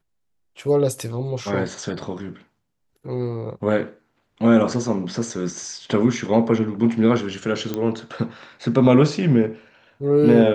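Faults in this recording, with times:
7.74 s: pop -12 dBFS

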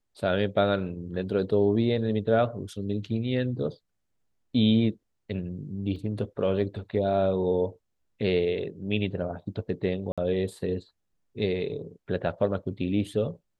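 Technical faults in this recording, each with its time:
5.96 s: dropout 3.6 ms
10.12–10.18 s: dropout 56 ms

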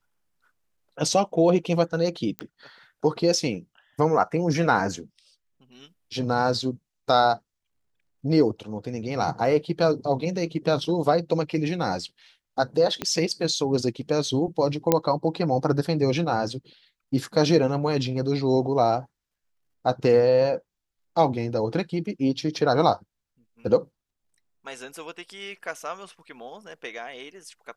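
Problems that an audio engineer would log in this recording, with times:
2.39 s: pop -17 dBFS
13.02 s: pop -12 dBFS
14.92 s: pop -4 dBFS

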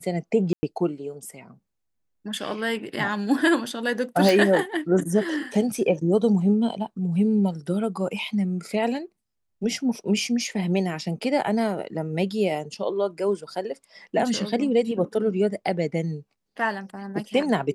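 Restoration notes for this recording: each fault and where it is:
0.53–0.63 s: dropout 100 ms
4.29 s: pop

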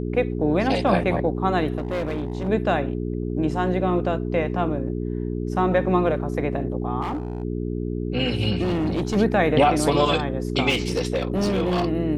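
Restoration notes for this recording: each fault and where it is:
hum 60 Hz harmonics 7 -27 dBFS
1.78–2.49 s: clipped -22 dBFS
7.01–7.43 s: clipped -23.5 dBFS
8.63–9.17 s: clipped -19.5 dBFS
10.69–11.86 s: clipped -17.5 dBFS

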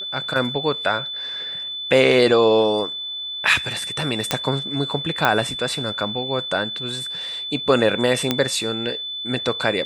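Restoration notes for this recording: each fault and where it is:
whine 3.5 kHz -27 dBFS
4.31 s: pop -2 dBFS
5.25 s: pop -4 dBFS
8.31 s: pop -4 dBFS

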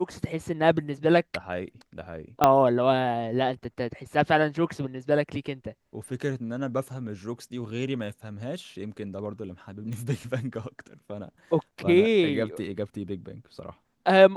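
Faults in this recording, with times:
2.44 s: pop -5 dBFS
9.93 s: pop -25 dBFS

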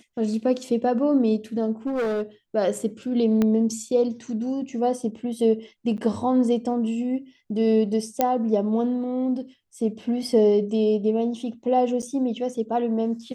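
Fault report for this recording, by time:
1.86–2.23 s: clipped -22 dBFS
3.42 s: pop -11 dBFS
5.97–5.98 s: dropout 9.3 ms
8.21 s: pop -7 dBFS
12.02–12.03 s: dropout 7.6 ms

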